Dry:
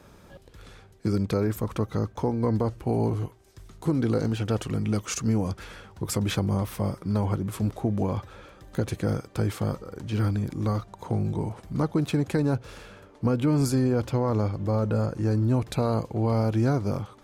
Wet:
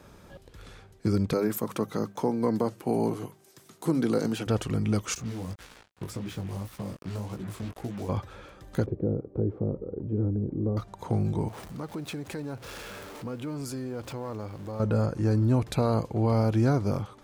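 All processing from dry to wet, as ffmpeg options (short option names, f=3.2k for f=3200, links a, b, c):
-filter_complex "[0:a]asettb=1/sr,asplit=3[a][b][c];[a]atrim=end=1.334[d];[b]atrim=start=1.33:end=4.47,asetpts=PTS-STARTPTS,afade=t=in:d=0.004:c=qsin,afade=t=out:st=3.136:d=0.004:c=qsin,highpass=f=150:w=0.5412,highpass=f=150:w=1.3066,highshelf=f=7.8k:g=9.5,bandreject=f=50:t=h:w=6,bandreject=f=100:t=h:w=6,bandreject=f=150:t=h:w=6,bandreject=f=200:t=h:w=6[e];[c]atrim=start=4.466[f];[d][e]acrossfade=d=0.004:c1=hsin:c2=qsin[g];[g][f]acrossfade=d=0.004:c1=qsin:c2=hsin,asettb=1/sr,asplit=3[h][i][j];[h]atrim=end=5.154[k];[i]atrim=start=5.15:end=8.09,asetpts=PTS-STARTPTS,afade=t=in:d=0.004:c=qsin,afade=t=out:st=2.936:d=0.004:c=qsin,acrusher=bits=5:mix=0:aa=0.5,flanger=delay=15.5:depth=6.6:speed=1.8,acrossover=split=530|6700[l][m][n];[l]acompressor=threshold=-33dB:ratio=4[o];[m]acompressor=threshold=-46dB:ratio=4[p];[n]acompressor=threshold=-53dB:ratio=4[q];[o][p][q]amix=inputs=3:normalize=0[r];[j]atrim=start=8.086[s];[k][r]acrossfade=d=0.004:c1=hsin:c2=qsin[t];[t][s]acrossfade=d=0.004:c1=qsin:c2=hsin,asettb=1/sr,asplit=3[u][v][w];[u]atrim=end=8.864[x];[v]atrim=start=8.86:end=10.77,asetpts=PTS-STARTPTS,afade=t=in:d=0.004:c=qsin,afade=t=out:st=1.906:d=0.004:c=qsin,acompressor=threshold=-31dB:ratio=1.5:attack=3.2:release=140:knee=1:detection=peak,lowpass=f=420:t=q:w=2.1[y];[w]atrim=start=10.766[z];[x][y]acrossfade=d=0.004:c1=hsin:c2=qsin[aa];[aa][z]acrossfade=d=0.004:c1=qsin:c2=hsin,asettb=1/sr,asplit=3[ab][ac][ad];[ab]atrim=end=11.484[ae];[ac]atrim=start=11.48:end=14.8,asetpts=PTS-STARTPTS,afade=t=in:d=0.004:c=qsin,afade=t=out:st=3.316:d=0.004:c=qsin,aeval=exprs='val(0)+0.5*0.0126*sgn(val(0))':c=same,acompressor=threshold=-37dB:ratio=2:attack=3.2:release=140:knee=1:detection=peak,lowshelf=f=190:g=-7.5[af];[ad]atrim=start=14.796[ag];[ae][af]acrossfade=d=0.004:c1=hsin:c2=qsin[ah];[ah][ag]acrossfade=d=0.004:c1=qsin:c2=hsin"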